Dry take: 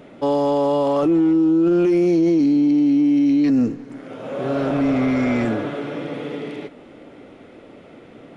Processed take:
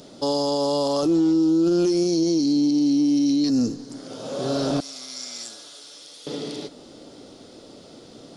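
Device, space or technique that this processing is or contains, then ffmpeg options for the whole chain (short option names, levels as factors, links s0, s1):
over-bright horn tweeter: -filter_complex "[0:a]asettb=1/sr,asplit=3[s0][s1][s2];[s0]atrim=end=4.804[s3];[s1]atrim=start=4.8:end=6.27,asetpts=PTS-STARTPTS,afade=t=in:d=0.004:c=qsin,afade=t=out:st=1.466:d=0.004:c=qsin,aderivative[s4];[s2]atrim=start=6.266[s5];[s3][s4]acrossfade=d=0.004:c1=hsin:c2=qsin[s6];[s6][s5]acrossfade=d=0.004:c1=qsin:c2=hsin,highshelf=f=3300:t=q:w=3:g=13.5,alimiter=limit=0.237:level=0:latency=1:release=92,volume=0.794"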